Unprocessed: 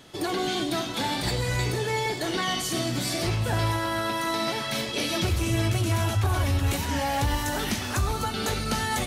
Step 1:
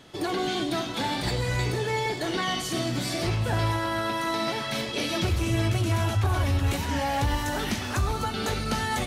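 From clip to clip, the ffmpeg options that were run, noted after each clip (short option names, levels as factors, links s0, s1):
-af "highshelf=f=6300:g=-6.5"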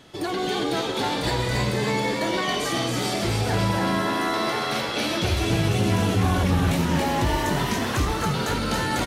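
-filter_complex "[0:a]asplit=8[s0][s1][s2][s3][s4][s5][s6][s7];[s1]adelay=277,afreqshift=82,volume=0.708[s8];[s2]adelay=554,afreqshift=164,volume=0.376[s9];[s3]adelay=831,afreqshift=246,volume=0.2[s10];[s4]adelay=1108,afreqshift=328,volume=0.106[s11];[s5]adelay=1385,afreqshift=410,volume=0.0556[s12];[s6]adelay=1662,afreqshift=492,volume=0.0295[s13];[s7]adelay=1939,afreqshift=574,volume=0.0157[s14];[s0][s8][s9][s10][s11][s12][s13][s14]amix=inputs=8:normalize=0,volume=1.12"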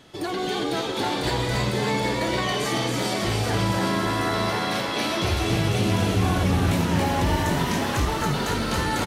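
-af "aecho=1:1:781:0.473,volume=0.891"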